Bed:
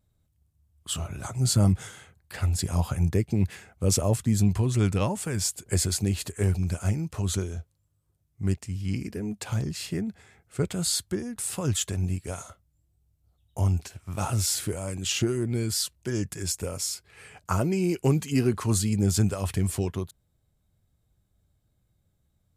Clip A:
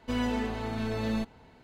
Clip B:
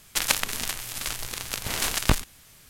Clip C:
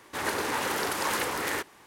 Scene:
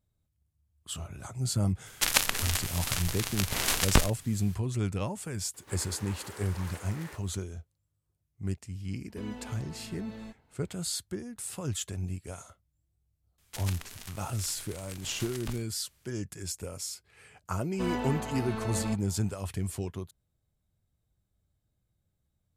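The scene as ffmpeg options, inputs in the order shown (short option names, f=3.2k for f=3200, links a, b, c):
-filter_complex "[2:a]asplit=2[a][b];[1:a]asplit=2[c][d];[0:a]volume=-7dB[e];[3:a]aeval=exprs='val(0)+0.5*0.00841*sgn(val(0))':c=same[f];[b]asoftclip=type=tanh:threshold=-8dB[g];[d]equalizer=f=940:w=0.67:g=6.5[h];[a]atrim=end=2.69,asetpts=PTS-STARTPTS,volume=-1dB,afade=t=in:d=0.004:c=hsin,afade=t=out:st=2.686:d=0.004:c=hsin,adelay=1860[i];[f]atrim=end=1.86,asetpts=PTS-STARTPTS,volume=-18dB,afade=t=in:d=0.004:c=hsin,afade=t=out:st=1.856:d=0.004:c=hsin,adelay=5540[j];[c]atrim=end=1.63,asetpts=PTS-STARTPTS,volume=-14dB,afade=t=in:d=0.004:c=hsin,afade=t=out:st=1.626:d=0.004:c=hsin,adelay=9080[k];[g]atrim=end=2.69,asetpts=PTS-STARTPTS,volume=-16dB,afade=t=in:d=0.004:c=hsin,afade=t=out:st=2.686:d=0.004:c=hsin,adelay=13380[l];[h]atrim=end=1.63,asetpts=PTS-STARTPTS,volume=-5.5dB,afade=t=in:d=0.004:c=hsin,afade=t=out:st=1.626:d=0.004:c=hsin,adelay=17710[m];[e][i][j][k][l][m]amix=inputs=6:normalize=0"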